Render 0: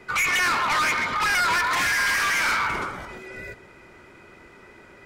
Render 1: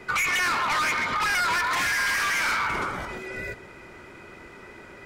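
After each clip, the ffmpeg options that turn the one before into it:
-af "acompressor=threshold=-27dB:ratio=6,volume=3.5dB"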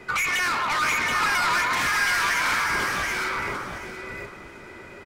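-af "aecho=1:1:727|1454|2181:0.708|0.135|0.0256"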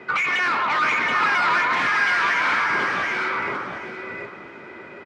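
-af "highpass=170,lowpass=3k,volume=3.5dB"

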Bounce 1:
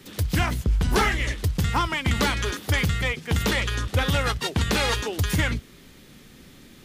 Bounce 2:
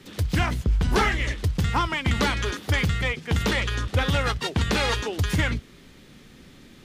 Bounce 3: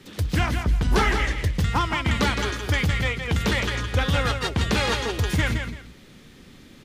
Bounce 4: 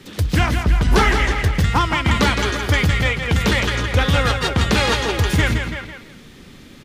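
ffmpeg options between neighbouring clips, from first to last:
-af "highshelf=f=10k:g=-12"
-af "aecho=1:1:166|335:0.473|0.112"
-filter_complex "[0:a]asplit=2[a][b];[b]adelay=330,highpass=300,lowpass=3.4k,asoftclip=type=hard:threshold=-18dB,volume=-9dB[c];[a][c]amix=inputs=2:normalize=0,volume=5.5dB"

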